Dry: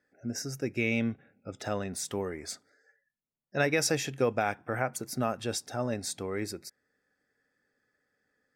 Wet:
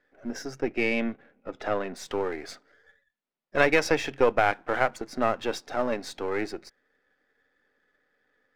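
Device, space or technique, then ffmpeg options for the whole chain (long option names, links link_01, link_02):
crystal radio: -filter_complex "[0:a]highpass=280,lowpass=3200,aeval=exprs='if(lt(val(0),0),0.447*val(0),val(0))':channel_layout=same,asettb=1/sr,asplit=3[link_01][link_02][link_03];[link_01]atrim=end=0.604[link_04];[link_02]atrim=start=0.6:end=1.96,asetpts=PTS-STARTPTS,afade=type=in:duration=0.004:curve=qsin,afade=type=out:start_time=1.356:duration=0.004:curve=qsin,highshelf=frequency=4500:gain=-9.5[link_05];[link_03]atrim=start=1.956[link_06];[link_04][link_05]acrossfade=duration=0.004:curve1=hsin:curve2=qsin[link_07];[link_07][link_06]acrossfade=duration=0.004:curve1=qsin:curve2=hsin,volume=9dB"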